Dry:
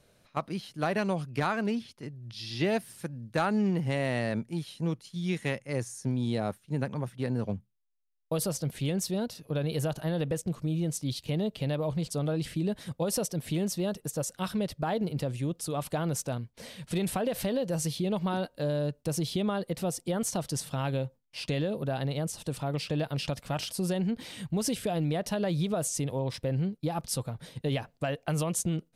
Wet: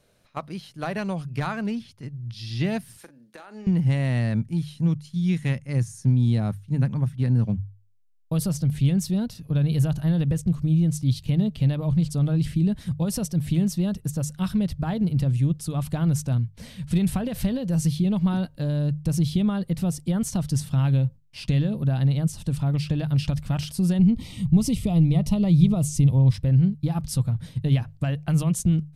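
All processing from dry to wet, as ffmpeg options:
ffmpeg -i in.wav -filter_complex "[0:a]asettb=1/sr,asplit=3[link_01][link_02][link_03];[link_01]atrim=end=2.974[link_04];[link_02]atrim=start=2.97:end=3.67,asetpts=PTS-STARTPTS,afade=type=in:duration=0.004:curve=qsin,afade=type=out:start_time=0.696:duration=0.004:curve=qsin,highpass=frequency=330:width=0.5412,highpass=frequency=330:width=1.3066,acompressor=threshold=-38dB:ratio=12:attack=3.2:release=140:knee=1:detection=peak,asplit=2[link_05][link_06];[link_06]adelay=42,volume=-12dB[link_07];[link_05][link_07]amix=inputs=2:normalize=0,atrim=end_sample=30870[link_08];[link_03]atrim=start=3.666[link_09];[link_04][link_08]acrossfade=duration=0.004:curve1=hsin:curve2=qsin[link_10];[link_10][link_09]acrossfade=duration=0.004:curve1=qsin:curve2=hsin,asettb=1/sr,asplit=3[link_11][link_12][link_13];[link_11]atrim=end=23.994[link_14];[link_12]atrim=start=23.99:end=26.31,asetpts=PTS-STARTPTS,afade=type=in:duration=0.004:curve=qsin,afade=type=out:start_time=2.316:duration=0.004:curve=qsin,asuperstop=centerf=1600:order=4:qfactor=2.6,lowshelf=frequency=140:gain=8.5[link_15];[link_13]atrim=start=26.306[link_16];[link_14][link_15]acrossfade=duration=0.004:curve1=hsin:curve2=qsin[link_17];[link_17][link_16]acrossfade=duration=0.004:curve1=qsin:curve2=hsin,bandreject=frequency=50:width_type=h:width=6,bandreject=frequency=100:width_type=h:width=6,bandreject=frequency=150:width_type=h:width=6,asubboost=boost=8:cutoff=160" out.wav

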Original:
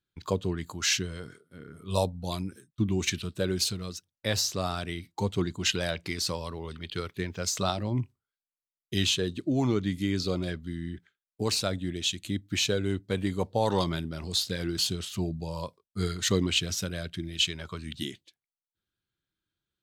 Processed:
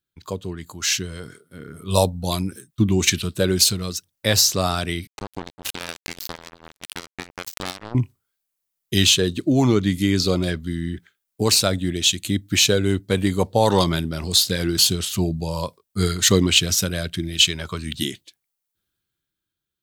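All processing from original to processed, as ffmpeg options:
ffmpeg -i in.wav -filter_complex "[0:a]asettb=1/sr,asplit=3[link_01][link_02][link_03];[link_01]atrim=end=5.074[link_04];[link_02]atrim=start=5.07:end=7.95,asetpts=PTS-STARTPTS,afade=type=in:duration=0.004:curve=qsin,afade=type=out:start_time=2.876:duration=0.004:curve=qsin,lowpass=5100,acompressor=threshold=-37dB:ratio=3:attack=3.2:release=140:knee=1:detection=peak,acrusher=bits=4:mix=0:aa=0.5[link_05];[link_03]atrim=start=7.946[link_06];[link_04][link_05]acrossfade=duration=0.004:curve1=hsin:curve2=qsin[link_07];[link_07][link_06]acrossfade=duration=0.004:curve1=qsin:curve2=hsin,dynaudnorm=framelen=190:gausssize=13:maxgain=11.5dB,highshelf=frequency=8300:gain=10.5,volume=-1dB" out.wav

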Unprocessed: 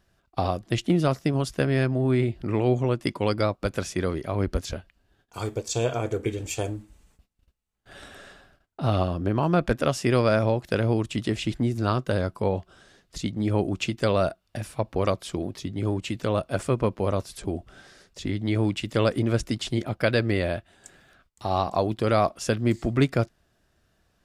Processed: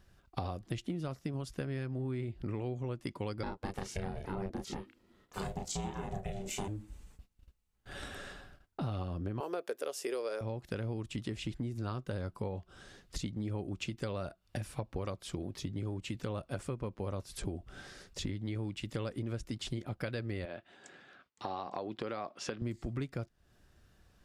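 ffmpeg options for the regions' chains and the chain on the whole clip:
ffmpeg -i in.wav -filter_complex "[0:a]asettb=1/sr,asplit=3[link_01][link_02][link_03];[link_01]atrim=end=3.434[link_04];[link_02]atrim=start=3.43:end=6.68,asetpts=PTS-STARTPTS,afade=type=in:duration=0.004:curve=qsin,afade=type=out:start_time=3.246:duration=0.004:curve=qsin,asplit=2[link_05][link_06];[link_06]adelay=32,volume=-2dB[link_07];[link_05][link_07]amix=inputs=2:normalize=0,atrim=end_sample=143325,aeval=exprs='val(0)*sin(2*PI*290*n/s)':channel_layout=same[link_08];[link_03]atrim=start=6.676[link_09];[link_04][link_08]acrossfade=duration=0.004:curve1=hsin:curve2=qsin[link_10];[link_10][link_09]acrossfade=duration=0.004:curve1=qsin:curve2=hsin,asettb=1/sr,asplit=3[link_11][link_12][link_13];[link_11]atrim=end=9.404[link_14];[link_12]atrim=start=9.4:end=10.41,asetpts=PTS-STARTPTS,afade=type=in:duration=0.004:curve=qsin,afade=type=out:start_time=1.006:duration=0.004:curve=qsin,highpass=frequency=430:width_type=q:width=4.5,aemphasis=mode=production:type=bsi[link_15];[link_13]atrim=start=10.406[link_16];[link_14][link_15]acrossfade=duration=0.004:curve1=hsin:curve2=qsin[link_17];[link_17][link_16]acrossfade=duration=0.004:curve1=qsin:curve2=hsin,asettb=1/sr,asplit=3[link_18][link_19][link_20];[link_18]atrim=end=20.454[link_21];[link_19]atrim=start=20.45:end=22.62,asetpts=PTS-STARTPTS,afade=type=in:duration=0.004:curve=qsin,afade=type=out:start_time=2.166:duration=0.004:curve=qsin,highpass=250,lowpass=4300,acompressor=threshold=-34dB:ratio=1.5:attack=3.2:release=140:knee=1:detection=peak[link_22];[link_20]atrim=start=22.616[link_23];[link_21][link_22]acrossfade=duration=0.004:curve1=hsin:curve2=qsin[link_24];[link_24][link_23]acrossfade=duration=0.004:curve1=qsin:curve2=hsin,lowshelf=frequency=120:gain=6.5,bandreject=frequency=650:width=12,acompressor=threshold=-35dB:ratio=8" out.wav

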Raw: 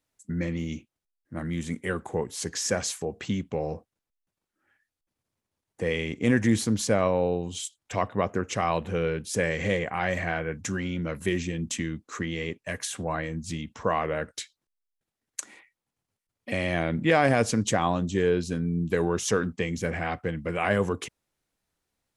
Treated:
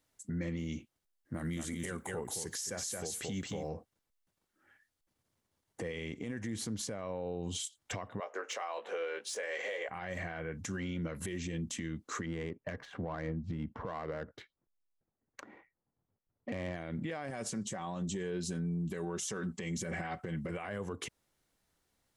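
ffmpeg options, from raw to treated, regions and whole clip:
ffmpeg -i in.wav -filter_complex "[0:a]asettb=1/sr,asplit=3[link_01][link_02][link_03];[link_01]atrim=end=1.344[link_04];[link_02]atrim=start=1.34:end=3.69,asetpts=PTS-STARTPTS,afade=type=in:duration=0.004:curve=qsin,afade=type=out:start_time=2.346:duration=0.004:curve=qsin,aemphasis=mode=production:type=50fm,aecho=1:1:222:0.562,atrim=end_sample=103635[link_05];[link_03]atrim=start=3.686[link_06];[link_04][link_05]acrossfade=duration=0.004:curve1=hsin:curve2=qsin[link_07];[link_07][link_06]acrossfade=duration=0.004:curve1=qsin:curve2=hsin,asettb=1/sr,asplit=3[link_08][link_09][link_10];[link_08]atrim=end=8.204[link_11];[link_09]atrim=start=8.2:end=9.89,asetpts=PTS-STARTPTS,afade=type=in:duration=0.004:curve=qsin,afade=type=out:start_time=1.686:duration=0.004:curve=qsin,highpass=frequency=480:width=0.5412,highpass=frequency=480:width=1.3066,asplit=2[link_12][link_13];[link_13]adelay=18,volume=-7dB[link_14];[link_12][link_14]amix=inputs=2:normalize=0,atrim=end_sample=74529,adynamicsmooth=sensitivity=3.5:basefreq=7100[link_15];[link_10]atrim=start=9.886[link_16];[link_11][link_15]acrossfade=duration=0.004:curve1=hsin:curve2=qsin[link_17];[link_17][link_16]acrossfade=duration=0.004:curve1=qsin:curve2=hsin,asettb=1/sr,asplit=3[link_18][link_19][link_20];[link_18]atrim=end=12.264[link_21];[link_19]atrim=start=12.26:end=16.76,asetpts=PTS-STARTPTS,afade=type=in:duration=0.004:curve=qsin,afade=type=out:start_time=4.496:duration=0.004:curve=qsin,lowpass=frequency=3200:poles=1,adynamicsmooth=sensitivity=2:basefreq=1200[link_22];[link_20]atrim=start=16.756[link_23];[link_21][link_22]acrossfade=duration=0.004:curve1=hsin:curve2=qsin[link_24];[link_24][link_23]acrossfade=duration=0.004:curve1=qsin:curve2=hsin,asettb=1/sr,asplit=3[link_25][link_26][link_27];[link_25]atrim=end=17.304[link_28];[link_26]atrim=start=17.3:end=20.51,asetpts=PTS-STARTPTS,afade=type=in:duration=0.004:curve=qsin,afade=type=out:start_time=3.206:duration=0.004:curve=qsin,equalizer=frequency=8000:width=1.7:gain=6,aecho=1:1:5.3:0.51,atrim=end_sample=141561,acompressor=threshold=-26dB:ratio=2.5:attack=3.2:release=140:knee=1:detection=peak[link_29];[link_27]atrim=start=20.506[link_30];[link_28][link_29]acrossfade=duration=0.004:curve1=hsin:curve2=qsin[link_31];[link_31][link_30]acrossfade=duration=0.004:curve1=qsin:curve2=hsin,bandreject=frequency=2500:width=17,acompressor=threshold=-34dB:ratio=4,alimiter=level_in=8dB:limit=-24dB:level=0:latency=1:release=114,volume=-8dB,volume=3dB" out.wav

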